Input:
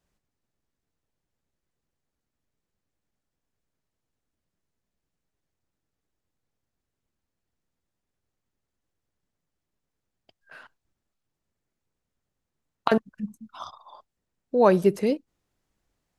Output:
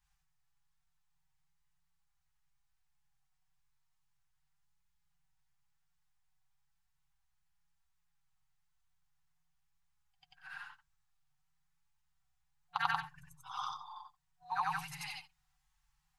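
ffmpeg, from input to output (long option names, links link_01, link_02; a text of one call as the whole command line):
ffmpeg -i in.wav -af "afftfilt=real='re':imag='-im':win_size=8192:overlap=0.75,flanger=delay=4.3:depth=1.2:regen=-36:speed=1:shape=triangular,alimiter=limit=-23.5dB:level=0:latency=1:release=245,afftfilt=real='re*lt(hypot(re,im),0.112)':imag='im*lt(hypot(re,im),0.112)':win_size=1024:overlap=0.75,bandreject=frequency=50:width_type=h:width=6,bandreject=frequency=100:width_type=h:width=6,bandreject=frequency=150:width_type=h:width=6,bandreject=frequency=200:width_type=h:width=6,bandreject=frequency=250:width_type=h:width=6,bandreject=frequency=300:width_type=h:width=6,bandreject=frequency=350:width_type=h:width=6,bandreject=frequency=400:width_type=h:width=6,afftfilt=real='re*(1-between(b*sr/4096,170,730))':imag='im*(1-between(b*sr/4096,170,730))':win_size=4096:overlap=0.75,flanger=delay=4.8:depth=1.9:regen=-46:speed=0.39:shape=sinusoidal,volume=12.5dB" out.wav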